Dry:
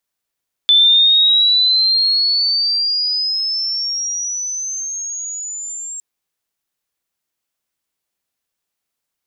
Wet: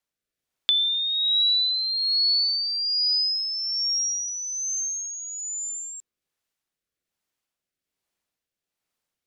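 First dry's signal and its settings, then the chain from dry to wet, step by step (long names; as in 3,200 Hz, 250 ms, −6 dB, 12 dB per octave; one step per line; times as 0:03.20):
glide logarithmic 3,500 Hz → 7,500 Hz −7 dBFS → −25.5 dBFS 5.31 s
high-shelf EQ 5,700 Hz −5.5 dB
downward compressor, threshold −19 dBFS
rotating-speaker cabinet horn 1.2 Hz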